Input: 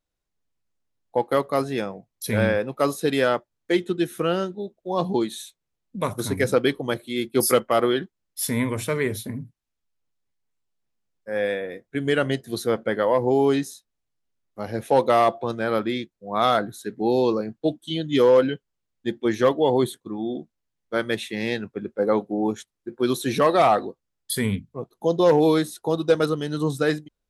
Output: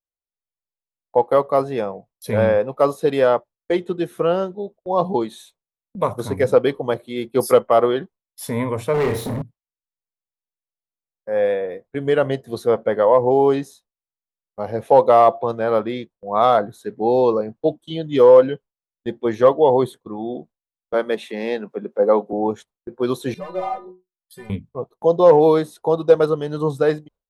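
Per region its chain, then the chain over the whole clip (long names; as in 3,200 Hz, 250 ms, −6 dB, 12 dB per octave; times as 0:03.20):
0:08.94–0:09.42: flutter between parallel walls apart 5.7 metres, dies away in 0.31 s + hard clipping −18 dBFS + power curve on the samples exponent 0.5
0:20.94–0:22.33: Butterworth high-pass 170 Hz + upward compression, threshold −28 dBFS
0:23.34–0:24.50: hard clipping −16 dBFS + stiff-string resonator 180 Hz, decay 0.3 s, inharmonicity 0.008
whole clip: flat-topped bell 700 Hz +9 dB; noise gate with hold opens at −32 dBFS; bass and treble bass +4 dB, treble −5 dB; level −2.5 dB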